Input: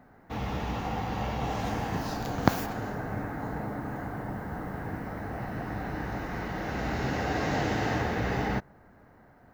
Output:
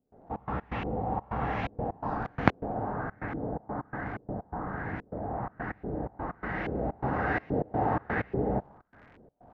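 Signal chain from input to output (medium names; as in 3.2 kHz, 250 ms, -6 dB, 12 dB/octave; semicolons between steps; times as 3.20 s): crackle 140 per s -41 dBFS; trance gate ".xx.x.xxxx.xxx.x" 126 bpm -24 dB; LFO low-pass saw up 1.2 Hz 400–2600 Hz; trim -1 dB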